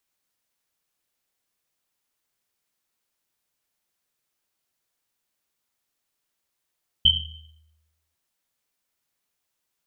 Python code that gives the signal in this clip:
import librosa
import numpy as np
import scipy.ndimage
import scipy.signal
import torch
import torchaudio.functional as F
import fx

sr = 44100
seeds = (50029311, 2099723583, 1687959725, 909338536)

y = fx.risset_drum(sr, seeds[0], length_s=1.1, hz=78.0, decay_s=1.15, noise_hz=3100.0, noise_width_hz=180.0, noise_pct=70)